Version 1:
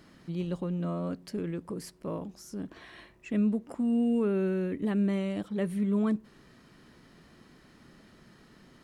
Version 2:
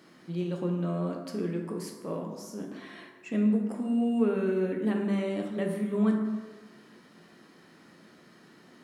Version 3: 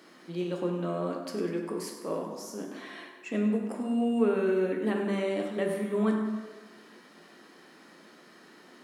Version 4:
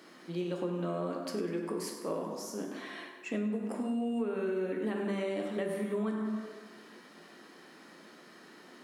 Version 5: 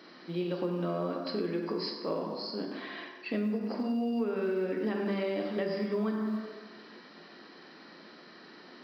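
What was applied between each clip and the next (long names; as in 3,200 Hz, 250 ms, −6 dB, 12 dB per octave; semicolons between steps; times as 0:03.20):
high-pass filter 200 Hz 12 dB per octave; dense smooth reverb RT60 1.3 s, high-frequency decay 0.5×, DRR 1 dB
high-pass filter 270 Hz 12 dB per octave; feedback echo with a high-pass in the loop 98 ms, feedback 51%, level −12 dB; level +3 dB
downward compressor 6 to 1, threshold −30 dBFS, peak gain reduction 11 dB
hearing-aid frequency compression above 3,900 Hz 4 to 1; floating-point word with a short mantissa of 6 bits; level +2 dB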